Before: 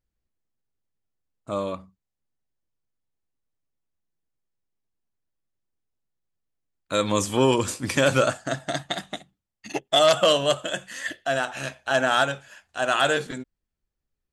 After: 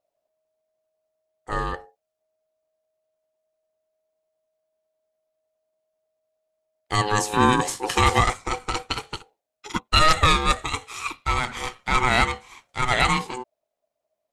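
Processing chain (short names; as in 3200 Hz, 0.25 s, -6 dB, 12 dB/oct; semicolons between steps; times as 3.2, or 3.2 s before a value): ring modulator 630 Hz; gain +4.5 dB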